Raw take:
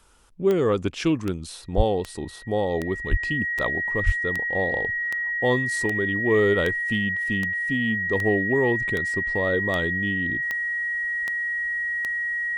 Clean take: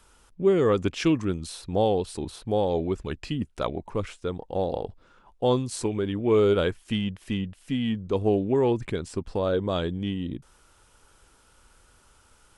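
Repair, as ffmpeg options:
-filter_complex "[0:a]adeclick=t=4,bandreject=f=1900:w=30,asplit=3[s0][s1][s2];[s0]afade=t=out:st=1.76:d=0.02[s3];[s1]highpass=f=140:w=0.5412,highpass=f=140:w=1.3066,afade=t=in:st=1.76:d=0.02,afade=t=out:st=1.88:d=0.02[s4];[s2]afade=t=in:st=1.88:d=0.02[s5];[s3][s4][s5]amix=inputs=3:normalize=0,asplit=3[s6][s7][s8];[s6]afade=t=out:st=3.1:d=0.02[s9];[s7]highpass=f=140:w=0.5412,highpass=f=140:w=1.3066,afade=t=in:st=3.1:d=0.02,afade=t=out:st=3.22:d=0.02[s10];[s8]afade=t=in:st=3.22:d=0.02[s11];[s9][s10][s11]amix=inputs=3:normalize=0,asplit=3[s12][s13][s14];[s12]afade=t=out:st=4.05:d=0.02[s15];[s13]highpass=f=140:w=0.5412,highpass=f=140:w=1.3066,afade=t=in:st=4.05:d=0.02,afade=t=out:st=4.17:d=0.02[s16];[s14]afade=t=in:st=4.17:d=0.02[s17];[s15][s16][s17]amix=inputs=3:normalize=0"

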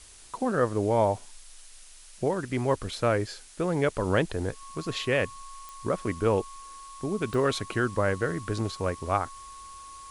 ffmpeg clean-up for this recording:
-af "adeclick=t=4,bandreject=f=1100:w=30,afftdn=nr=24:nf=-48"

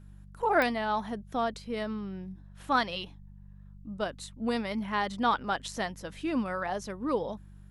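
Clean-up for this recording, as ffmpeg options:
-af "adeclick=t=4,bandreject=f=48.8:t=h:w=4,bandreject=f=97.6:t=h:w=4,bandreject=f=146.4:t=h:w=4,bandreject=f=195.2:t=h:w=4"

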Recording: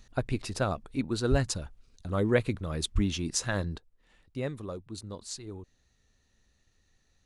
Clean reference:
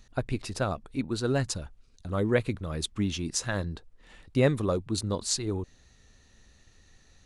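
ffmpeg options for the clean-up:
-filter_complex "[0:a]asplit=3[s0][s1][s2];[s0]afade=t=out:st=1.3:d=0.02[s3];[s1]highpass=f=140:w=0.5412,highpass=f=140:w=1.3066,afade=t=in:st=1.3:d=0.02,afade=t=out:st=1.42:d=0.02[s4];[s2]afade=t=in:st=1.42:d=0.02[s5];[s3][s4][s5]amix=inputs=3:normalize=0,asplit=3[s6][s7][s8];[s6]afade=t=out:st=2.94:d=0.02[s9];[s7]highpass=f=140:w=0.5412,highpass=f=140:w=1.3066,afade=t=in:st=2.94:d=0.02,afade=t=out:st=3.06:d=0.02[s10];[s8]afade=t=in:st=3.06:d=0.02[s11];[s9][s10][s11]amix=inputs=3:normalize=0,asetnsamples=n=441:p=0,asendcmd='3.78 volume volume 11dB',volume=1"

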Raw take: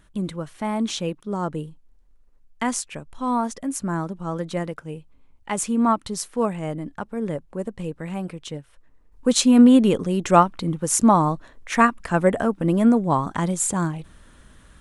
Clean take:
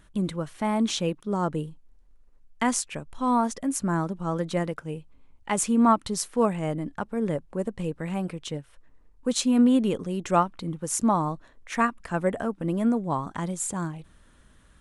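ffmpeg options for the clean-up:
-af "asetnsamples=n=441:p=0,asendcmd='9.12 volume volume -7dB',volume=1"

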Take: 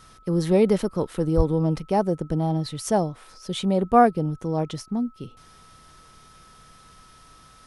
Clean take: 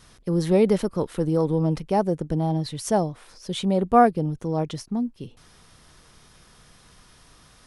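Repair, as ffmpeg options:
-filter_complex "[0:a]bandreject=f=1300:w=30,asplit=3[s0][s1][s2];[s0]afade=t=out:st=1.36:d=0.02[s3];[s1]highpass=f=140:w=0.5412,highpass=f=140:w=1.3066,afade=t=in:st=1.36:d=0.02,afade=t=out:st=1.48:d=0.02[s4];[s2]afade=t=in:st=1.48:d=0.02[s5];[s3][s4][s5]amix=inputs=3:normalize=0"

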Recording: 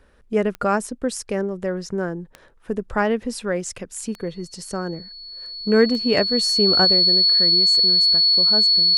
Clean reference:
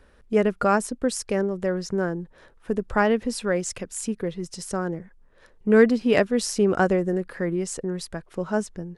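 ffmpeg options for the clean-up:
-af "adeclick=t=4,bandreject=f=4400:w=30,asetnsamples=n=441:p=0,asendcmd='6.85 volume volume 3.5dB',volume=1"

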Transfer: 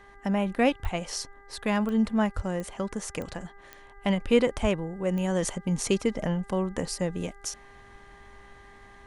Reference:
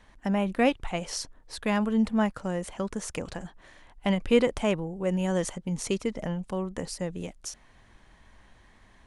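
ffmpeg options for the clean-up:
-filter_complex "[0:a]adeclick=t=4,bandreject=f=399.8:t=h:w=4,bandreject=f=799.6:t=h:w=4,bandreject=f=1199.4:t=h:w=4,bandreject=f=1599.2:t=h:w=4,bandreject=f=1999:t=h:w=4,asplit=3[s0][s1][s2];[s0]afade=t=out:st=0.82:d=0.02[s3];[s1]highpass=f=140:w=0.5412,highpass=f=140:w=1.3066,afade=t=in:st=0.82:d=0.02,afade=t=out:st=0.94:d=0.02[s4];[s2]afade=t=in:st=0.94:d=0.02[s5];[s3][s4][s5]amix=inputs=3:normalize=0,asplit=3[s6][s7][s8];[s6]afade=t=out:st=2.35:d=0.02[s9];[s7]highpass=f=140:w=0.5412,highpass=f=140:w=1.3066,afade=t=in:st=2.35:d=0.02,afade=t=out:st=2.47:d=0.02[s10];[s8]afade=t=in:st=2.47:d=0.02[s11];[s9][s10][s11]amix=inputs=3:normalize=0,asplit=3[s12][s13][s14];[s12]afade=t=out:st=4.61:d=0.02[s15];[s13]highpass=f=140:w=0.5412,highpass=f=140:w=1.3066,afade=t=in:st=4.61:d=0.02,afade=t=out:st=4.73:d=0.02[s16];[s14]afade=t=in:st=4.73:d=0.02[s17];[s15][s16][s17]amix=inputs=3:normalize=0,asetnsamples=n=441:p=0,asendcmd='5.42 volume volume -3.5dB',volume=1"

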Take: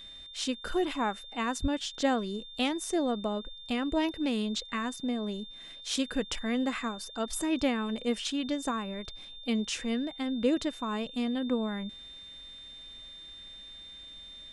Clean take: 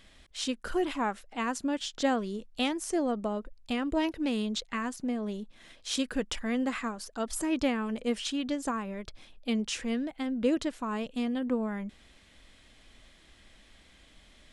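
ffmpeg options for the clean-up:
-filter_complex "[0:a]bandreject=f=3600:w=30,asplit=3[s0][s1][s2];[s0]afade=t=out:st=1.61:d=0.02[s3];[s1]highpass=f=140:w=0.5412,highpass=f=140:w=1.3066,afade=t=in:st=1.61:d=0.02,afade=t=out:st=1.73:d=0.02[s4];[s2]afade=t=in:st=1.73:d=0.02[s5];[s3][s4][s5]amix=inputs=3:normalize=0"

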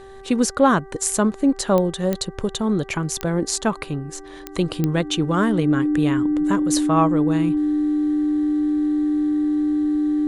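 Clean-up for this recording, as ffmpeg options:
-af "adeclick=t=4,bandreject=f=389.3:t=h:w=4,bandreject=f=778.6:t=h:w=4,bandreject=f=1167.9:t=h:w=4,bandreject=f=1557.2:t=h:w=4,bandreject=f=1946.5:t=h:w=4,bandreject=f=300:w=30"

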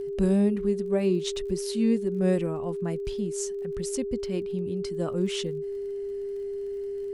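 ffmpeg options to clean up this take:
-af "adeclick=t=4,bandreject=f=400:w=30"

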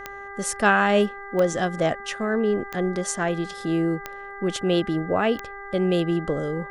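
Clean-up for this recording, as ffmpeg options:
-af "adeclick=t=4,bandreject=f=398.8:t=h:w=4,bandreject=f=797.6:t=h:w=4,bandreject=f=1196.4:t=h:w=4,bandreject=f=1595.2:t=h:w=4,bandreject=f=1994:t=h:w=4"

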